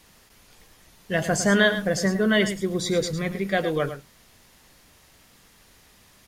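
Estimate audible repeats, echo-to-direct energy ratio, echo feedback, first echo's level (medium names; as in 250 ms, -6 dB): 1, -11.0 dB, no regular repeats, -11.0 dB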